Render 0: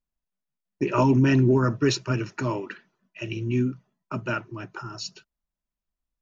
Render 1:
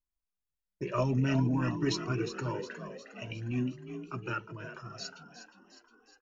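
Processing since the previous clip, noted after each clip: on a send: frequency-shifting echo 0.359 s, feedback 55%, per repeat +36 Hz, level -10 dB; on the sum: cascading flanger rising 0.52 Hz; gain -3.5 dB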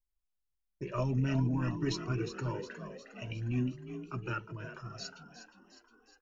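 low shelf 88 Hz +11.5 dB; in parallel at -3 dB: vocal rider within 4 dB 2 s; on the sum: gain -8.5 dB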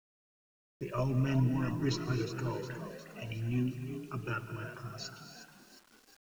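non-linear reverb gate 0.31 s rising, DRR 10 dB; requantised 10-bit, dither none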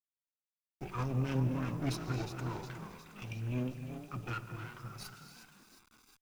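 minimum comb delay 0.81 ms; gain -2 dB

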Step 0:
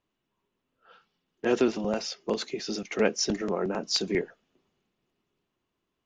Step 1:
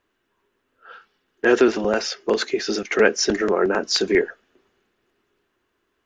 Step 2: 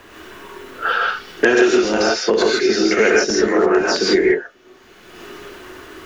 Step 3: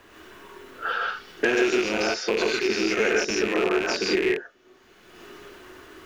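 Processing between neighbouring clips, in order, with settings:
in parallel at -2 dB: limiter -20.5 dBFS, peak gain reduction 10 dB; on the sum: fifteen-band EQ 160 Hz -9 dB, 400 Hz +5 dB, 1600 Hz +10 dB; gain +2 dB
non-linear reverb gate 0.18 s rising, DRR -5 dB; three-band squash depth 100%; gain -2 dB
rattling part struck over -31 dBFS, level -9 dBFS; gain -8.5 dB

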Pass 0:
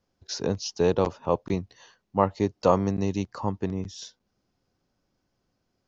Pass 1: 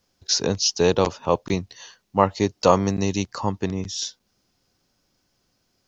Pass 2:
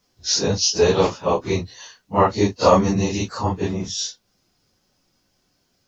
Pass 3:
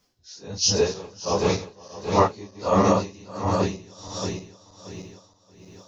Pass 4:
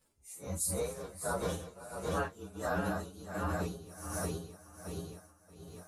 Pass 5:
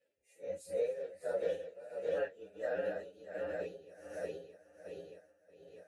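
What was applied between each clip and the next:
high shelf 2200 Hz +11.5 dB; gain +3 dB
phase scrambler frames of 0.1 s; gain +2.5 dB
regenerating reverse delay 0.314 s, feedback 68%, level -5 dB; dB-linear tremolo 1.4 Hz, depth 24 dB
inharmonic rescaling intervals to 118%; compressor 4:1, threshold -33 dBFS, peak gain reduction 14.5 dB
vowel filter e; gain +8 dB

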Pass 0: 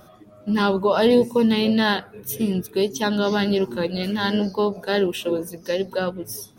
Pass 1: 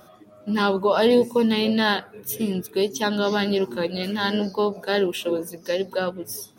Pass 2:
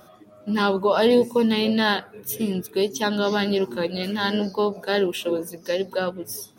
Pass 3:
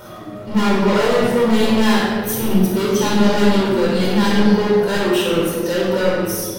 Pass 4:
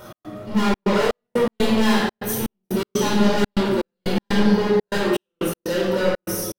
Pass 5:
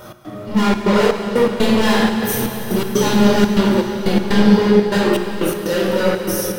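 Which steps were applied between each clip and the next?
low shelf 120 Hz -11 dB
nothing audible
hard clip -24.5 dBFS, distortion -6 dB; power-law curve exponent 0.7; shoebox room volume 1700 m³, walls mixed, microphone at 4.6 m; gain +1.5 dB
step gate "x.xxxx.xx.." 122 bpm -60 dB; gain -3 dB
plate-style reverb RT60 4.9 s, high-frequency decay 0.9×, DRR 5 dB; gain +3.5 dB

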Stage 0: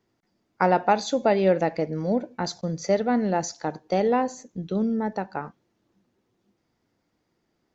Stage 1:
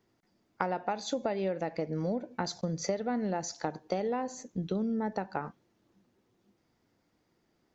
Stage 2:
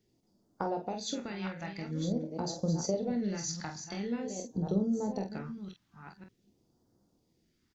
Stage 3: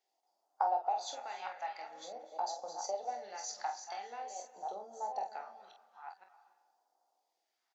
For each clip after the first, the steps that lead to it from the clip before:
compressor 10:1, threshold -28 dBFS, peak gain reduction 14.5 dB
reverse delay 0.52 s, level -8 dB; phaser stages 2, 0.47 Hz, lowest notch 460–2200 Hz; early reflections 25 ms -8 dB, 47 ms -7.5 dB
ladder high-pass 720 Hz, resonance 75%; reverb RT60 1.1 s, pre-delay 0.211 s, DRR 14 dB; gain +6.5 dB

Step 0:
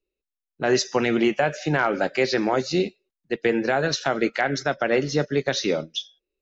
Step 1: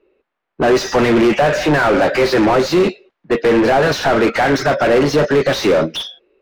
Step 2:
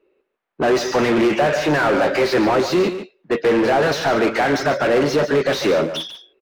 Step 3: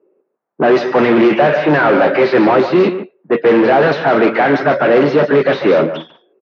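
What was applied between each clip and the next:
low-pass opened by the level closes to 2100 Hz, open at -19 dBFS; sine folder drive 7 dB, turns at -6.5 dBFS; overdrive pedal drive 29 dB, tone 1000 Hz, clips at -6 dBFS
low shelf 84 Hz -8.5 dB; echo 0.145 s -11 dB; gain -3.5 dB
air absorption 160 m; low-pass opened by the level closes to 930 Hz, open at -8.5 dBFS; HPF 130 Hz 24 dB/oct; gain +6.5 dB

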